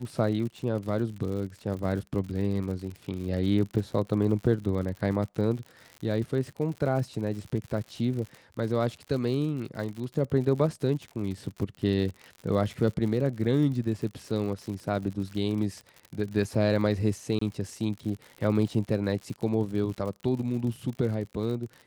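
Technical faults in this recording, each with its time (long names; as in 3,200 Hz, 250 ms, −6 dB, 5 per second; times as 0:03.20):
surface crackle 77 per second −35 dBFS
0:17.39–0:17.41: drop-out 24 ms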